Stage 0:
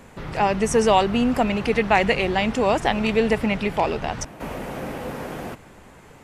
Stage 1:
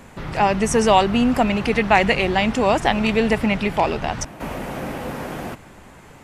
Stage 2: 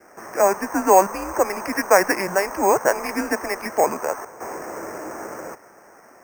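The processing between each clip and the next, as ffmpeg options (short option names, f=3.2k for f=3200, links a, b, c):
-af "equalizer=f=460:t=o:w=0.41:g=-3.5,volume=3dB"
-af "highpass=f=510:t=q:w=0.5412,highpass=f=510:t=q:w=1.307,lowpass=f=2.2k:t=q:w=0.5176,lowpass=f=2.2k:t=q:w=0.7071,lowpass=f=2.2k:t=q:w=1.932,afreqshift=-190,adynamicequalizer=threshold=0.0141:dfrequency=970:dqfactor=2.4:tfrequency=970:tqfactor=2.4:attack=5:release=100:ratio=0.375:range=4:mode=boostabove:tftype=bell,acrusher=samples=6:mix=1:aa=0.000001"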